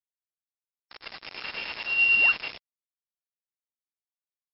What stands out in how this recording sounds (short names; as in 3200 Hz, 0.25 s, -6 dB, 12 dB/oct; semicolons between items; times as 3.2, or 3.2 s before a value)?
a buzz of ramps at a fixed pitch in blocks of 16 samples; tremolo saw up 9.3 Hz, depth 40%; a quantiser's noise floor 6-bit, dither none; MP3